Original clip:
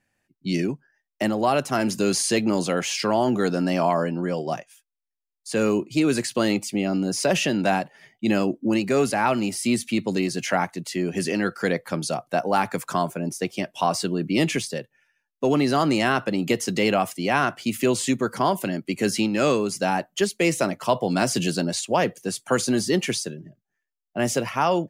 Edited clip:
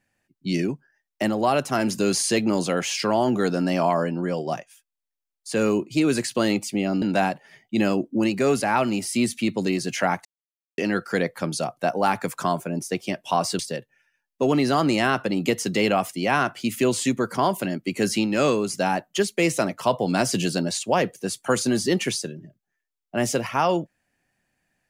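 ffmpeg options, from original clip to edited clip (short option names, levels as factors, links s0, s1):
-filter_complex "[0:a]asplit=5[s0][s1][s2][s3][s4];[s0]atrim=end=7.022[s5];[s1]atrim=start=7.518:end=10.75,asetpts=PTS-STARTPTS,afade=t=out:st=3.228:d=0.004:c=hsin[s6];[s2]atrim=start=10.75:end=11.28,asetpts=PTS-STARTPTS,volume=0[s7];[s3]atrim=start=11.28:end=14.092,asetpts=PTS-STARTPTS,afade=t=in:d=0.004:c=hsin[s8];[s4]atrim=start=14.608[s9];[s6][s7][s8]concat=n=3:v=0:a=1[s10];[s5][s10]acrossfade=d=0.004:c1=hsin:c2=hsin[s11];[s11][s9]acrossfade=d=0.004:c1=hsin:c2=hsin"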